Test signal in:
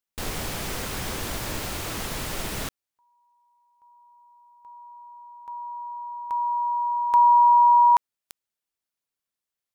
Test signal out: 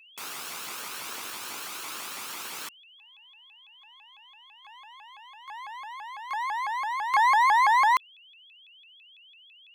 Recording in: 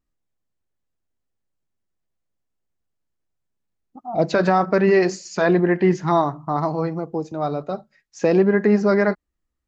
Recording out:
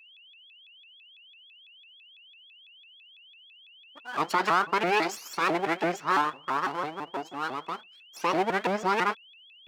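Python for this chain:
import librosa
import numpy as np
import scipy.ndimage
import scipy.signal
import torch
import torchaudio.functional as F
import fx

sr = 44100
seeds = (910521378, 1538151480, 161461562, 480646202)

y = fx.lower_of_two(x, sr, delay_ms=0.8)
y = scipy.signal.sosfilt(scipy.signal.butter(2, 520.0, 'highpass', fs=sr, output='sos'), y)
y = y + 10.0 ** (-49.0 / 20.0) * np.sin(2.0 * np.pi * 3000.0 * np.arange(len(y)) / sr)
y = fx.vibrato_shape(y, sr, shape='saw_up', rate_hz=6.0, depth_cents=250.0)
y = y * librosa.db_to_amplitude(-2.5)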